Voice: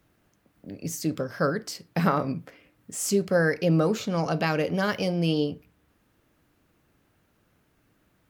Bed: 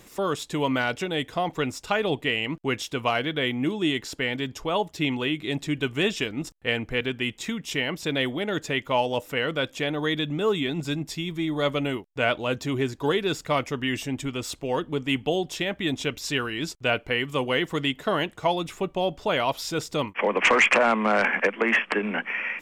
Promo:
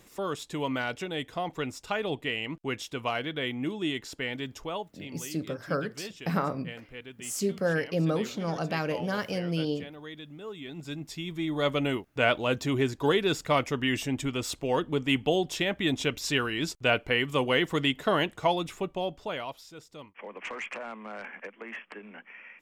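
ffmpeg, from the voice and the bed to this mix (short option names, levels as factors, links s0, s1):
-filter_complex "[0:a]adelay=4300,volume=0.562[s0];[1:a]volume=3.35,afade=t=out:st=4.61:d=0.32:silence=0.281838,afade=t=in:st=10.55:d=1.41:silence=0.149624,afade=t=out:st=18.3:d=1.37:silence=0.11885[s1];[s0][s1]amix=inputs=2:normalize=0"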